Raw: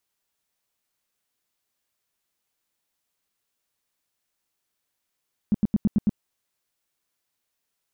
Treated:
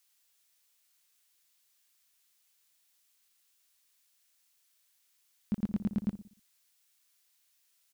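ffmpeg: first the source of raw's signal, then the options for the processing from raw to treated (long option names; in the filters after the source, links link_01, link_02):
-f lavfi -i "aevalsrc='0.168*sin(2*PI*209*mod(t,0.11))*lt(mod(t,0.11),5/209)':duration=0.66:sample_rate=44100"
-filter_complex "[0:a]tiltshelf=frequency=1200:gain=-9,asplit=2[link_01][link_02];[link_02]adelay=60,lowpass=frequency=830:poles=1,volume=-12dB,asplit=2[link_03][link_04];[link_04]adelay=60,lowpass=frequency=830:poles=1,volume=0.47,asplit=2[link_05][link_06];[link_06]adelay=60,lowpass=frequency=830:poles=1,volume=0.47,asplit=2[link_07][link_08];[link_08]adelay=60,lowpass=frequency=830:poles=1,volume=0.47,asplit=2[link_09][link_10];[link_10]adelay=60,lowpass=frequency=830:poles=1,volume=0.47[link_11];[link_01][link_03][link_05][link_07][link_09][link_11]amix=inputs=6:normalize=0"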